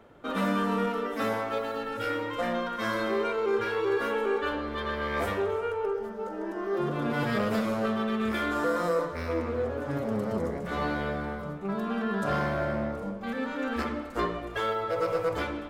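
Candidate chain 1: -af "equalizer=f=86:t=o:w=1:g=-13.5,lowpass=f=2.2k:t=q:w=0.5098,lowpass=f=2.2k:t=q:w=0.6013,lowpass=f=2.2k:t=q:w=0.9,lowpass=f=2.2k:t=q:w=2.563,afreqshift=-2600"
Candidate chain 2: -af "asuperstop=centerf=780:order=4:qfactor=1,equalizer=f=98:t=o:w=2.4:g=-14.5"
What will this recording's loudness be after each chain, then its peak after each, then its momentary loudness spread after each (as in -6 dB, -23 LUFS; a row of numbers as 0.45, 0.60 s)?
-28.0, -35.0 LUFS; -16.0, -20.5 dBFS; 6, 7 LU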